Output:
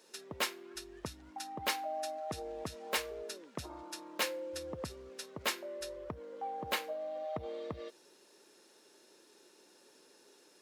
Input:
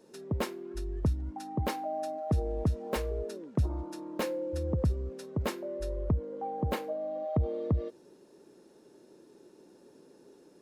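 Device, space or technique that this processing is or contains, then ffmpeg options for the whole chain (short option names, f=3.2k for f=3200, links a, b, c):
filter by subtraction: -filter_complex "[0:a]asplit=2[a][b];[b]lowpass=2.8k,volume=-1[c];[a][c]amix=inputs=2:normalize=0,volume=5.5dB"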